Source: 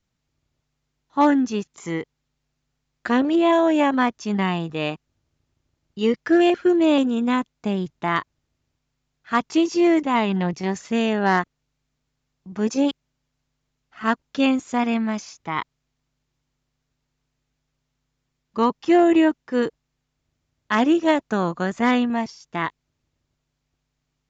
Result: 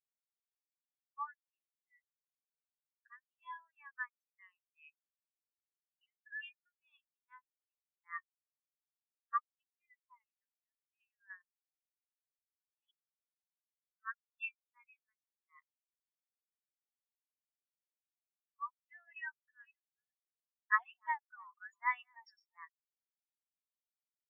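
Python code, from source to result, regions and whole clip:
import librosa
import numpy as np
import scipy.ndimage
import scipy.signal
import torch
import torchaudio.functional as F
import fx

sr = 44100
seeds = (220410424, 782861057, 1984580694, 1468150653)

y = fx.chain(x, sr, fx.tremolo_shape(shape='saw_down', hz=10.0, depth_pct=75),
    fx.high_shelf(hz=3800.0, db=-3.5), at=(9.5, 12.77))
y = fx.chain(y, sr, fx.reverse_delay(ms=366, wet_db=-9.5),
    fx.highpass_res(hz=720.0, q=3.3),
    fx.sustainer(db_per_s=66.0), at=(19.07, 22.65))
y = scipy.signal.sosfilt(scipy.signal.butter(4, 1300.0, 'highpass', fs=sr, output='sos'), y)
y = fx.spectral_expand(y, sr, expansion=4.0)
y = F.gain(torch.from_numpy(y), -6.0).numpy()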